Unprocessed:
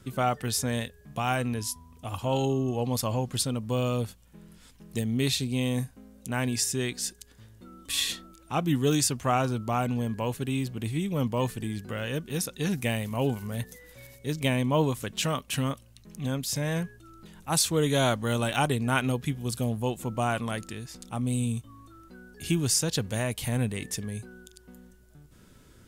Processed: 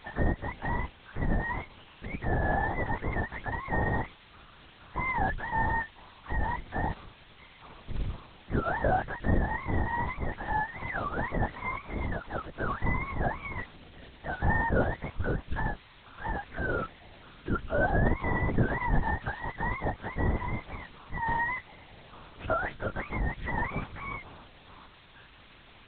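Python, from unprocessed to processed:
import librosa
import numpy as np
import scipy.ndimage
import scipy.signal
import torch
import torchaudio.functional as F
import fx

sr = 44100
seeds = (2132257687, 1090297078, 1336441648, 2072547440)

y = fx.octave_mirror(x, sr, pivot_hz=480.0)
y = fx.quant_dither(y, sr, seeds[0], bits=8, dither='triangular')
y = fx.lpc_vocoder(y, sr, seeds[1], excitation='whisper', order=8)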